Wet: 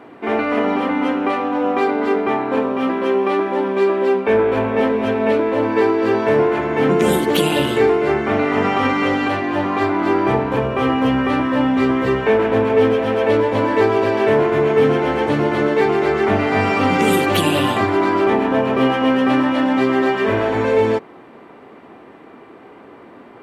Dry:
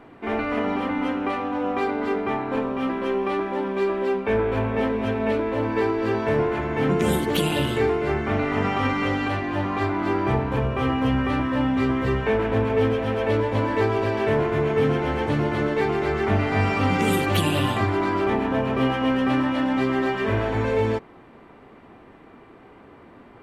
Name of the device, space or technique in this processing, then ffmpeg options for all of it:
filter by subtraction: -filter_complex "[0:a]asplit=2[link_01][link_02];[link_02]lowpass=360,volume=-1[link_03];[link_01][link_03]amix=inputs=2:normalize=0,volume=5.5dB"

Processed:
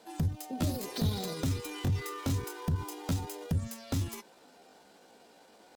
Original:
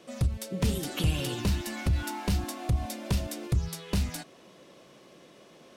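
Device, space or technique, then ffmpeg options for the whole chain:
chipmunk voice: -af "asetrate=60591,aresample=44100,atempo=0.727827,volume=-4dB"

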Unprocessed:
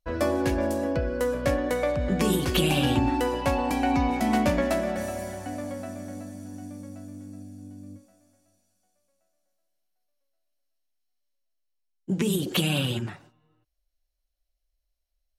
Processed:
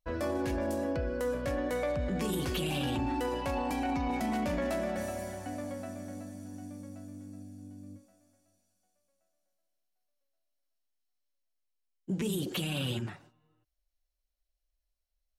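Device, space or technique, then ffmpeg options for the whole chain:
soft clipper into limiter: -af "asoftclip=type=tanh:threshold=-12.5dB,alimiter=limit=-20.5dB:level=0:latency=1:release=13,volume=-4.5dB"

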